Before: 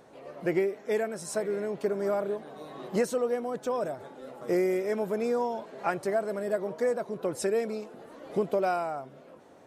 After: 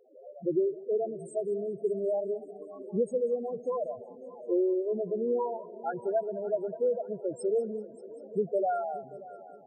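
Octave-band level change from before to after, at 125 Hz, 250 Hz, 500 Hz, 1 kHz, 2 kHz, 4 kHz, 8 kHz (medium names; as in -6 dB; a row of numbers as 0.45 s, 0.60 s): -4.5 dB, -2.0 dB, -0.5 dB, -3.0 dB, under -10 dB, under -20 dB, under -10 dB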